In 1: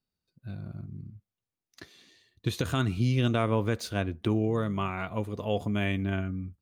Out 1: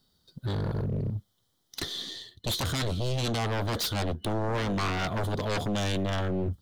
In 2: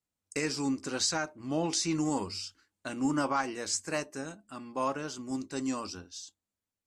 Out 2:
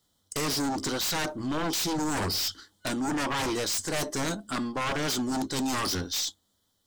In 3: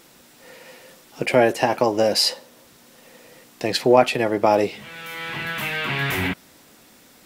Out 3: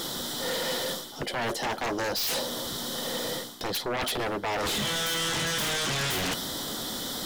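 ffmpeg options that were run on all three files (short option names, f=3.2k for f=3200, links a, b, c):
-af "superequalizer=11b=0.708:12b=0.251:13b=2.24:14b=1.41,areverse,acompressor=threshold=-35dB:ratio=12,areverse,aeval=exprs='0.0531*sin(PI/2*4.47*val(0)/0.0531)':c=same,aeval=exprs='0.0562*(cos(1*acos(clip(val(0)/0.0562,-1,1)))-cos(1*PI/2))+0.00141*(cos(8*acos(clip(val(0)/0.0562,-1,1)))-cos(8*PI/2))':c=same"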